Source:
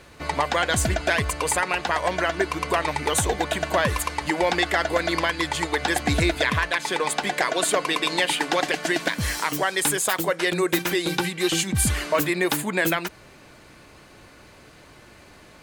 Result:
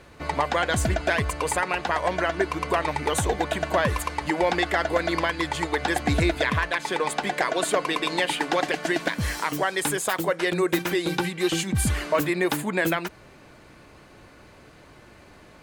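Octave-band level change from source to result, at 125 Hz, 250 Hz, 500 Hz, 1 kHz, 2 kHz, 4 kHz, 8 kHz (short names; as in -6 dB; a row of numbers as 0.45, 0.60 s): 0.0, 0.0, -0.5, -1.0, -2.0, -4.0, -5.5 dB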